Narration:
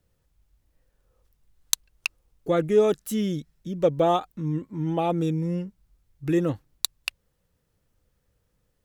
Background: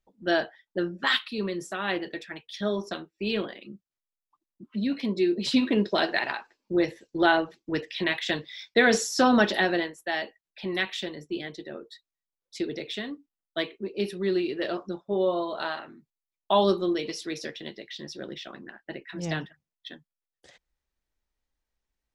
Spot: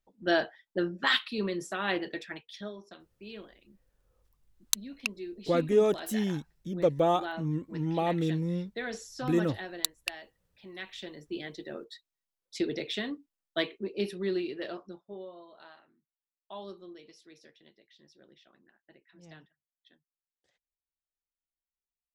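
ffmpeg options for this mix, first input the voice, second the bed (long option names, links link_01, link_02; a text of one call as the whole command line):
ffmpeg -i stem1.wav -i stem2.wav -filter_complex "[0:a]adelay=3000,volume=-4dB[link_01];[1:a]volume=15dB,afade=type=out:start_time=2.31:duration=0.42:silence=0.177828,afade=type=in:start_time=10.73:duration=1.23:silence=0.149624,afade=type=out:start_time=13.46:duration=1.83:silence=0.0841395[link_02];[link_01][link_02]amix=inputs=2:normalize=0" out.wav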